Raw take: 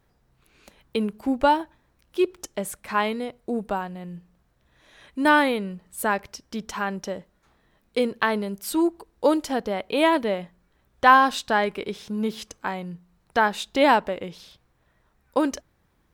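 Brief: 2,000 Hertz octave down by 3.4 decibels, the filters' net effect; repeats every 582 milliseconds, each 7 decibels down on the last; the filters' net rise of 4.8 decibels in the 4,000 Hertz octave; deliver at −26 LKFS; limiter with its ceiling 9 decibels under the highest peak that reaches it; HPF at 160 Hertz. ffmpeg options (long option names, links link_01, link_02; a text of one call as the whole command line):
ffmpeg -i in.wav -af "highpass=160,equalizer=frequency=2000:width_type=o:gain=-6.5,equalizer=frequency=4000:width_type=o:gain=8.5,alimiter=limit=-13.5dB:level=0:latency=1,aecho=1:1:582|1164|1746|2328|2910:0.447|0.201|0.0905|0.0407|0.0183,volume=1.5dB" out.wav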